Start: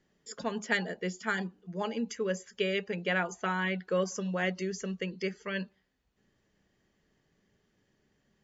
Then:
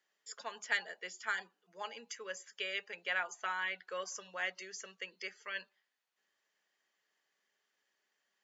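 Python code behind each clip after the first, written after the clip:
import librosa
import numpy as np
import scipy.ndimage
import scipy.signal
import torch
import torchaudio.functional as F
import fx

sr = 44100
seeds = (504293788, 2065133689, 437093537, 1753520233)

y = scipy.signal.sosfilt(scipy.signal.butter(2, 920.0, 'highpass', fs=sr, output='sos'), x)
y = F.gain(torch.from_numpy(y), -3.0).numpy()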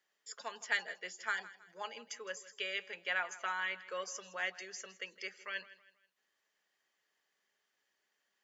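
y = fx.echo_feedback(x, sr, ms=161, feedback_pct=37, wet_db=-17.5)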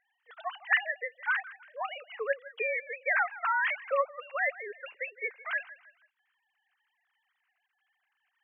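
y = fx.sine_speech(x, sr)
y = F.gain(torch.from_numpy(y), 8.5).numpy()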